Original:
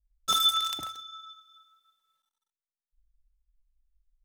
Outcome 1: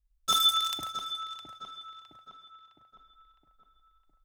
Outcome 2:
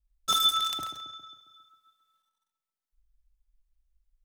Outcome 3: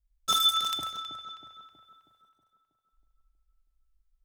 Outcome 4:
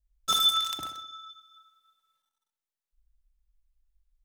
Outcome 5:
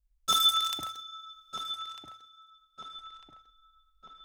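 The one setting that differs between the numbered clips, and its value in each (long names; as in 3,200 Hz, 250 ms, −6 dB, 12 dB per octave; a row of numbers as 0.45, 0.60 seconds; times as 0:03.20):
feedback echo with a low-pass in the loop, delay time: 661, 135, 320, 63, 1,249 milliseconds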